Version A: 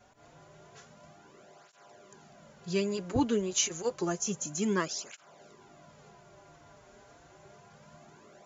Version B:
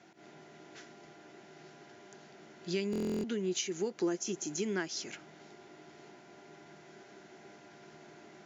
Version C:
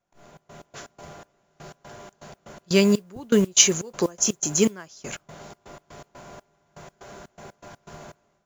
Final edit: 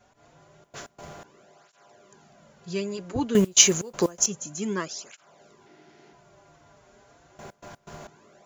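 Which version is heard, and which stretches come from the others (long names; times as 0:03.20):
A
0:00.64–0:01.24: punch in from C
0:03.35–0:04.26: punch in from C
0:05.66–0:06.13: punch in from B
0:07.39–0:08.07: punch in from C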